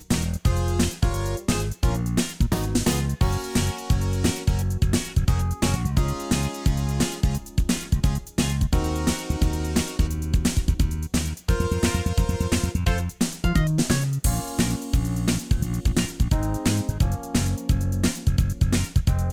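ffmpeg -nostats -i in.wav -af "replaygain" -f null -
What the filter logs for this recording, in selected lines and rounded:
track_gain = +6.0 dB
track_peak = 0.243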